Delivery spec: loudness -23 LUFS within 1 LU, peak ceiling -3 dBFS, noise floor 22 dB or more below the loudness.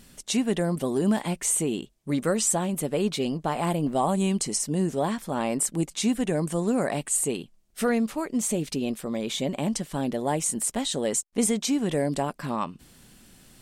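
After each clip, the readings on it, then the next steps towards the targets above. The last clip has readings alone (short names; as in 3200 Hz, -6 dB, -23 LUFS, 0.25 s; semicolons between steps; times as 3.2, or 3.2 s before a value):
loudness -26.5 LUFS; peak -12.0 dBFS; loudness target -23.0 LUFS
-> gain +3.5 dB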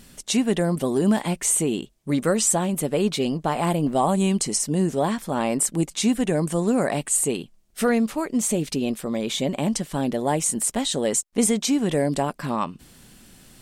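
loudness -23.0 LUFS; peak -8.5 dBFS; noise floor -55 dBFS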